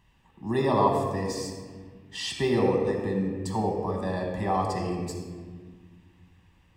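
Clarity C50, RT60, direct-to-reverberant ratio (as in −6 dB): 3.0 dB, 1.6 s, 0.5 dB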